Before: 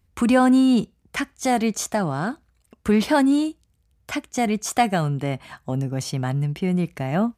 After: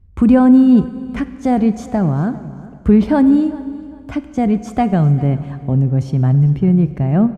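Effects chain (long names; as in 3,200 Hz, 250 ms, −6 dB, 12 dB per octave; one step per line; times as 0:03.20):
spectral tilt −4.5 dB per octave
repeating echo 398 ms, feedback 26%, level −20 dB
on a send at −13 dB: convolution reverb RT60 2.2 s, pre-delay 32 ms
on the sum: level −1 dB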